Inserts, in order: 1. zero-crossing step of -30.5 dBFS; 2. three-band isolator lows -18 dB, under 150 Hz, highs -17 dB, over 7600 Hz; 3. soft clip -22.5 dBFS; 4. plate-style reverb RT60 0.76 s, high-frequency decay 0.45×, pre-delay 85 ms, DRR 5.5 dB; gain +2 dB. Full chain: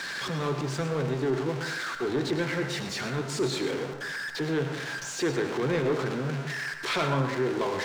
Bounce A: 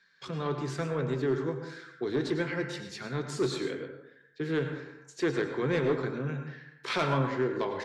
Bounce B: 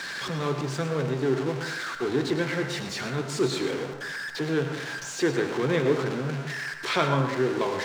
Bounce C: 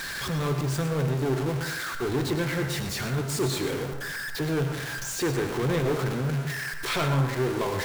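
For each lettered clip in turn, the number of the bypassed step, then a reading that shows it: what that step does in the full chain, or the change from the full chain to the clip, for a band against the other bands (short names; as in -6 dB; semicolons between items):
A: 1, distortion -10 dB; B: 3, distortion -14 dB; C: 2, 125 Hz band +4.5 dB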